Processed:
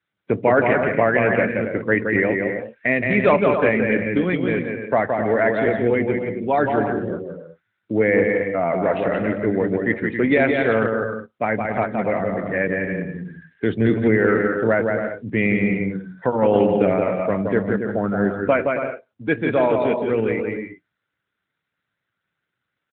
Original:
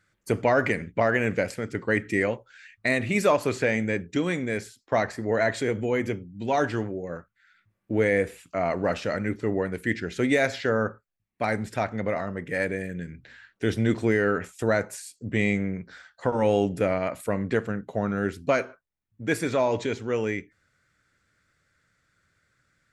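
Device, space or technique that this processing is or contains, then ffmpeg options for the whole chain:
mobile call with aggressive noise cancelling: -af "highpass=110,aecho=1:1:170|272|333.2|369.9|392:0.631|0.398|0.251|0.158|0.1,afftdn=nr=15:nf=-37,volume=5dB" -ar 8000 -c:a libopencore_amrnb -b:a 12200

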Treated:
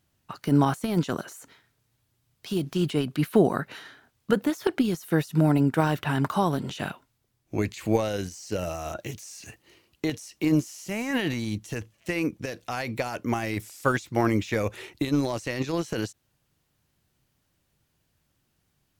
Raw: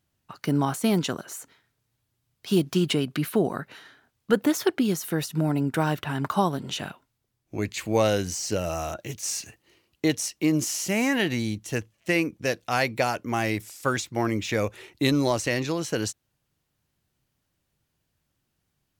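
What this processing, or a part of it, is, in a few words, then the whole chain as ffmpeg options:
de-esser from a sidechain: -filter_complex "[0:a]asplit=2[a][b];[b]highpass=f=4.5k:w=0.5412,highpass=f=4.5k:w=1.3066,apad=whole_len=837773[c];[a][c]sidechaincompress=threshold=-47dB:ratio=5:attack=1.5:release=35,volume=4dB"

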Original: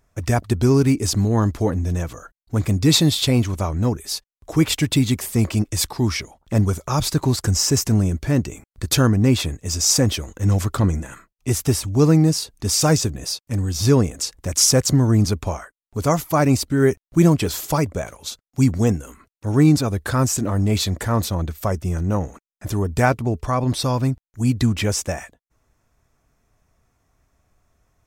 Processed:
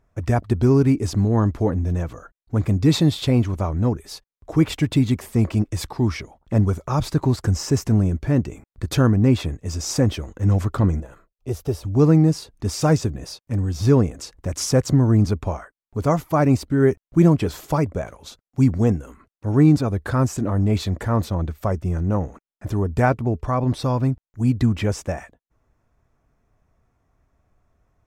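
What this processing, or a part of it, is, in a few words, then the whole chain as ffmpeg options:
through cloth: -filter_complex "[0:a]highshelf=f=2.9k:g=-13.5,asettb=1/sr,asplit=3[a][b][c];[a]atrim=end=11.004[d];[b]atrim=start=11:end=11.85,asetpts=PTS-STARTPTS,afade=t=in:d=0.004:c=qsin,afade=t=out:st=0.846:d=0.004:c=qsin,equalizer=f=125:t=o:w=1:g=-5,equalizer=f=250:t=o:w=1:g=-9,equalizer=f=500:t=o:w=1:g=5,equalizer=f=1k:t=o:w=1:g=-5,equalizer=f=2k:t=o:w=1:g=-10,equalizer=f=8k:t=o:w=1:g=-8[e];[c]atrim=start=11.846[f];[d][e]acrossfade=d=0.004:c1=hsin:c2=qsin[g];[g][f]acrossfade=d=0.004:c1=qsin:c2=hsin"

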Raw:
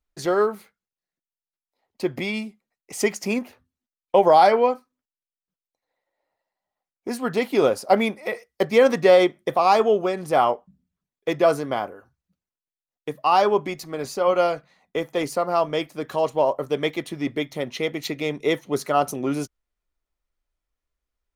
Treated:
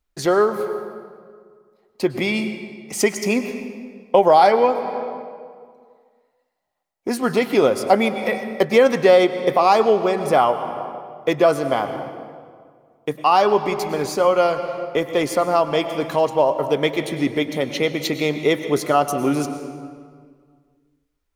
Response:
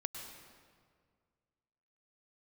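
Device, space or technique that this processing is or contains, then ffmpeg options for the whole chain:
ducked reverb: -filter_complex "[0:a]asplit=3[a][b][c];[1:a]atrim=start_sample=2205[d];[b][d]afir=irnorm=-1:irlink=0[e];[c]apad=whole_len=941907[f];[e][f]sidechaincompress=threshold=-21dB:ratio=8:attack=36:release=493,volume=3dB[g];[a][g]amix=inputs=2:normalize=0,volume=-1dB"

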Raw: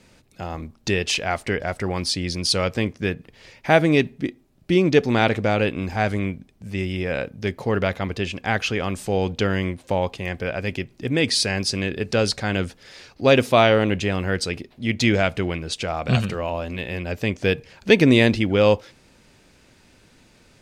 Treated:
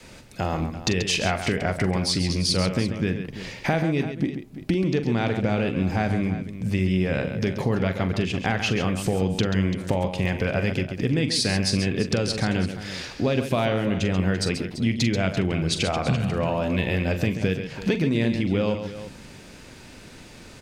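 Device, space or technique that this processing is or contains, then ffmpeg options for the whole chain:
serial compression, peaks first: -af "adynamicequalizer=threshold=0.02:dfrequency=160:dqfactor=0.87:tfrequency=160:tqfactor=0.87:attack=5:release=100:ratio=0.375:range=4:mode=boostabove:tftype=bell,acompressor=threshold=-25dB:ratio=6,acompressor=threshold=-36dB:ratio=1.5,aecho=1:1:43|135|339:0.282|0.355|0.211,volume=8.5dB"

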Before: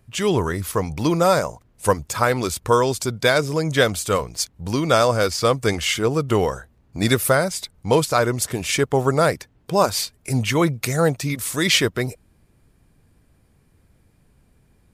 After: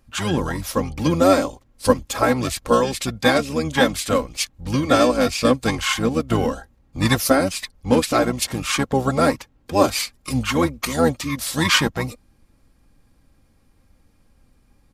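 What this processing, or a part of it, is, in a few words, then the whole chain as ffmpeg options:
octave pedal: -filter_complex "[0:a]aecho=1:1:3.7:0.66,asplit=2[a][b];[b]asetrate=22050,aresample=44100,atempo=2,volume=-2dB[c];[a][c]amix=inputs=2:normalize=0,volume=-3dB"

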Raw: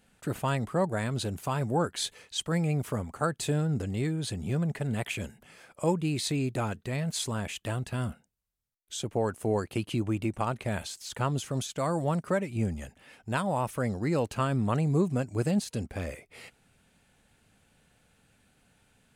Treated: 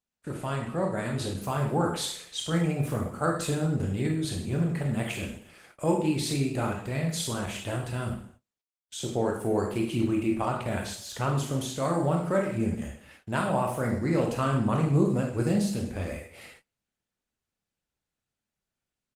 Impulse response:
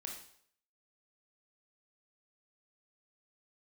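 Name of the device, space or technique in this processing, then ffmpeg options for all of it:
speakerphone in a meeting room: -filter_complex "[0:a]asettb=1/sr,asplit=3[a][b][c];[a]atrim=end=12.294[d];[b]atrim=start=12.29:end=12.74,asetpts=PTS-STARTPTS,afade=t=in:d=0.004:c=qsin,afade=t=out:st=0.446:d=0.004:c=qsin,equalizer=f=83:w=4.5:g=-2[e];[c]atrim=start=12.736[f];[d][e]acrossfade=d=0.004:c1=hsin:c2=qsin[g];[g][f]acrossfade=d=0.004:c1=qsin:c2=hsin[h];[1:a]atrim=start_sample=2205[i];[h][i]afir=irnorm=-1:irlink=0,asplit=2[j][k];[k]adelay=130,highpass=300,lowpass=3.4k,asoftclip=type=hard:threshold=-24dB,volume=-27dB[l];[j][l]amix=inputs=2:normalize=0,dynaudnorm=f=710:g=3:m=4.5dB,agate=range=-26dB:threshold=-52dB:ratio=16:detection=peak,volume=1dB" -ar 48000 -c:a libopus -b:a 20k

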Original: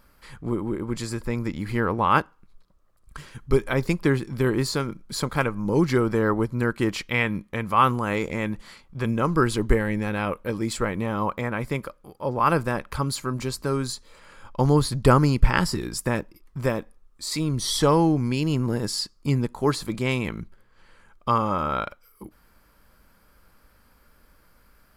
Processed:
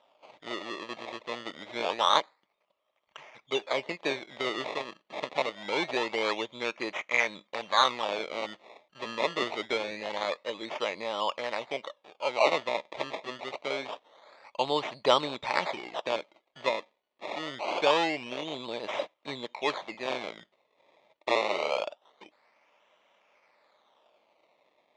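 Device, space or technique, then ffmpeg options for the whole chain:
circuit-bent sampling toy: -af "acrusher=samples=20:mix=1:aa=0.000001:lfo=1:lforange=20:lforate=0.25,highpass=570,equalizer=f=610:t=q:w=4:g=8,equalizer=f=890:t=q:w=4:g=3,equalizer=f=1.5k:t=q:w=4:g=-9,equalizer=f=2.2k:t=q:w=4:g=6,equalizer=f=3.6k:t=q:w=4:g=5,equalizer=f=5.2k:t=q:w=4:g=-6,lowpass=f=5.3k:w=0.5412,lowpass=f=5.3k:w=1.3066,volume=-3.5dB"

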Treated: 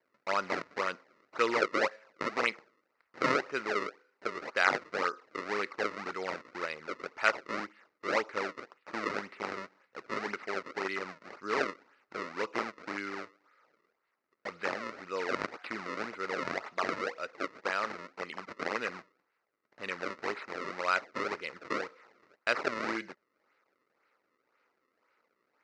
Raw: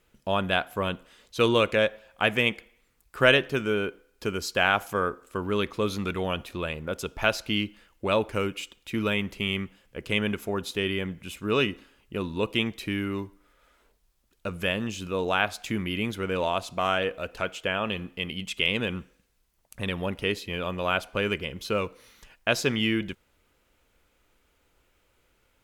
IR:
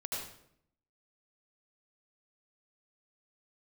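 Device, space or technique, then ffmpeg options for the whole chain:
circuit-bent sampling toy: -af "acrusher=samples=32:mix=1:aa=0.000001:lfo=1:lforange=51.2:lforate=1.9,highpass=420,equalizer=f=710:t=q:w=4:g=-4,equalizer=f=1.3k:t=q:w=4:g=7,equalizer=f=2k:t=q:w=4:g=7,equalizer=f=3.3k:t=q:w=4:g=-10,lowpass=f=5.2k:w=0.5412,lowpass=f=5.2k:w=1.3066,volume=-4.5dB"

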